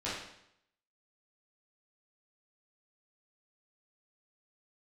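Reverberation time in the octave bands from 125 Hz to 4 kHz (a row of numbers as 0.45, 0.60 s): 0.80, 0.75, 0.75, 0.75, 0.75, 0.70 s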